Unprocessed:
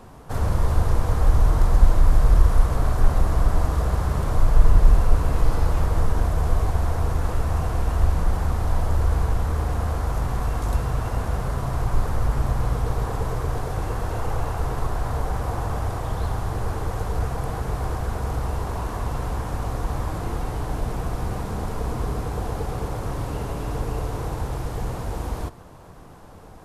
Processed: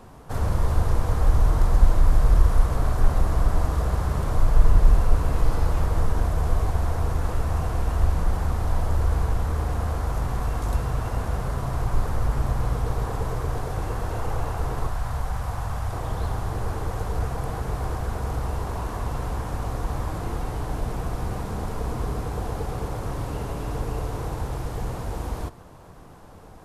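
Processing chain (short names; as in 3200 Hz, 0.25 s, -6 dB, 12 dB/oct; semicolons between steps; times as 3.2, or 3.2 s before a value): 14.89–15.93 bell 360 Hz -10.5 dB 1.3 oct; gain -1.5 dB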